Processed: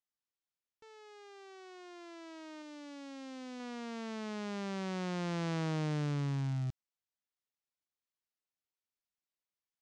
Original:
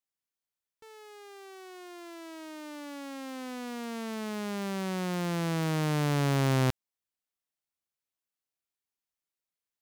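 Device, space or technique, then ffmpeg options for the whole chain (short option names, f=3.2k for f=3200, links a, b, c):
synthesiser wavefolder: -filter_complex "[0:a]aeval=exprs='0.0562*(abs(mod(val(0)/0.0562+3,4)-2)-1)':c=same,lowpass=f=6.9k:w=0.5412,lowpass=f=6.9k:w=1.3066,asettb=1/sr,asplit=3[a][b][c];[a]atrim=end=2.624[d];[b]atrim=start=2.62:end=3.6,asetpts=PTS-STARTPTS,afade=t=in:d=0.004:c=qsin,afade=t=out:st=0.976:d=0.004:c=qsin,equalizer=f=1.2k:t=o:w=2:g=-5[e];[c]atrim=start=3.596[f];[d][e]acrossfade=d=0.004:c1=hsin:c2=qsin[g];[g][f]acrossfade=d=0.004:c1=qsin:c2=hsin,volume=-5dB"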